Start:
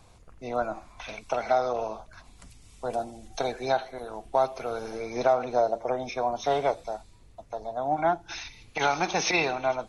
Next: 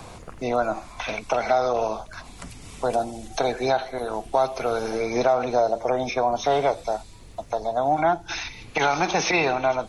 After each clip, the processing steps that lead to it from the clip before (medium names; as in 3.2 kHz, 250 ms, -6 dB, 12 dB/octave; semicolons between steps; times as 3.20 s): in parallel at +1.5 dB: peak limiter -21 dBFS, peak gain reduction 10 dB; on the sum: three bands compressed up and down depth 40%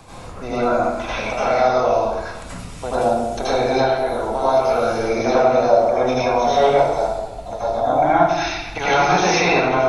reverberation RT60 1.1 s, pre-delay 74 ms, DRR -10 dB; trim -4 dB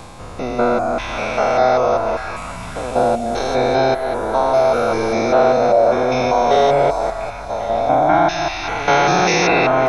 spectrogram pixelated in time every 200 ms; reverb removal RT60 0.59 s; repeats whose band climbs or falls 544 ms, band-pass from 1.3 kHz, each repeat 0.7 oct, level -6.5 dB; trim +5 dB